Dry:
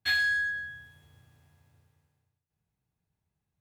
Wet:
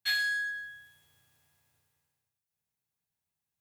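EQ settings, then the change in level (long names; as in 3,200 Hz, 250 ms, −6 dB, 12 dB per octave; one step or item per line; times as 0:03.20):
spectral tilt +3 dB per octave
−6.0 dB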